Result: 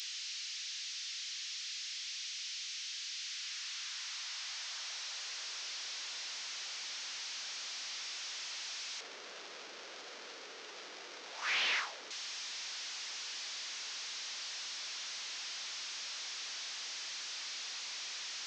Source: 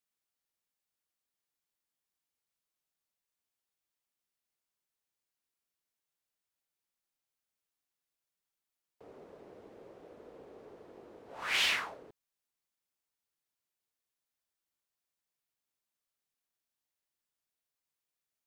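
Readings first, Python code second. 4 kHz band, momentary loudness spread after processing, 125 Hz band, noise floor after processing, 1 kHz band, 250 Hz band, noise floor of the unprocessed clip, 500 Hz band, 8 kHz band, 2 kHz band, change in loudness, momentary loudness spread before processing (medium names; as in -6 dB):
+6.0 dB, 7 LU, under -10 dB, -50 dBFS, +1.0 dB, -5.0 dB, under -85 dBFS, -2.5 dB, +12.5 dB, +1.0 dB, -8.5 dB, 15 LU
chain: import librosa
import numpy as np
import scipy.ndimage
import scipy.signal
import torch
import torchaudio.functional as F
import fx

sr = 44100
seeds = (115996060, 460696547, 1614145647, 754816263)

y = fx.delta_mod(x, sr, bps=32000, step_db=-41.0)
y = np.diff(y, prepend=0.0)
y = fx.filter_sweep_highpass(y, sr, from_hz=2400.0, to_hz=190.0, start_s=3.09, end_s=6.34, q=0.95)
y = fx.high_shelf(y, sr, hz=3800.0, db=-6.5)
y = F.gain(torch.from_numpy(y), 15.0).numpy()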